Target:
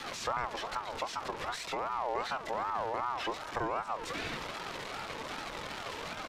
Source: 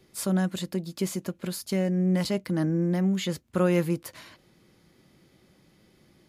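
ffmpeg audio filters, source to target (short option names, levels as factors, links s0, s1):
-filter_complex "[0:a]aeval=exprs='val(0)+0.5*0.0376*sgn(val(0))':c=same,adynamicequalizer=threshold=0.02:dfrequency=180:dqfactor=0.85:tfrequency=180:tqfactor=0.85:attack=5:release=100:ratio=0.375:range=1.5:mode=boostabove:tftype=bell,acrossover=split=320|1200[s0][s1][s2];[s2]asoftclip=type=hard:threshold=0.0251[s3];[s0][s1][s3]amix=inputs=3:normalize=0,asetrate=28595,aresample=44100,atempo=1.54221,acrossover=split=160 5200:gain=0.0708 1 0.178[s4][s5][s6];[s4][s5][s6]amix=inputs=3:normalize=0,acompressor=threshold=0.0316:ratio=3,aeval=exprs='0.1*(cos(1*acos(clip(val(0)/0.1,-1,1)))-cos(1*PI/2))+0.0251*(cos(2*acos(clip(val(0)/0.1,-1,1)))-cos(2*PI/2))':c=same,flanger=delay=1.3:depth=1.9:regen=61:speed=1.1:shape=sinusoidal,aeval=exprs='val(0)*sin(2*PI*890*n/s+890*0.25/2.6*sin(2*PI*2.6*n/s))':c=same,volume=1.88"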